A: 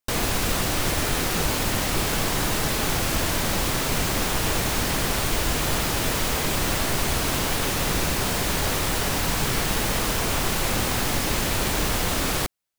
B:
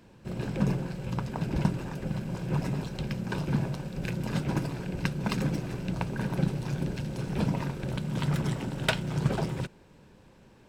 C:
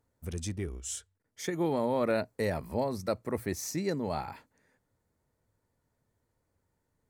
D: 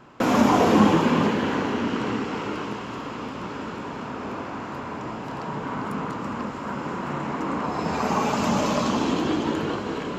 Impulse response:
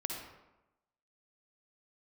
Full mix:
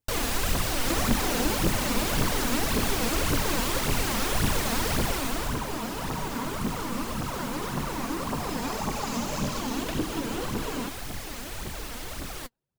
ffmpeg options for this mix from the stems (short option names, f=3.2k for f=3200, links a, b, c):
-filter_complex "[0:a]volume=-5.5dB,afade=t=out:st=4.92:d=0.71:silence=0.334965[a];[1:a]adelay=1000,volume=-14.5dB,asplit=2[b][c];[c]volume=-10.5dB[d];[2:a]volume=-16.5dB[e];[3:a]bass=f=250:g=3,treble=f=4k:g=9,acompressor=threshold=-28dB:ratio=6,adelay=700,volume=-2.5dB[f];[d]aecho=0:1:238|476|714|952|1190|1428|1666|1904|2142|2380:1|0.6|0.36|0.216|0.13|0.0778|0.0467|0.028|0.0168|0.0101[g];[a][b][e][f][g]amix=inputs=5:normalize=0,aphaser=in_gain=1:out_gain=1:delay=4.5:decay=0.56:speed=1.8:type=triangular"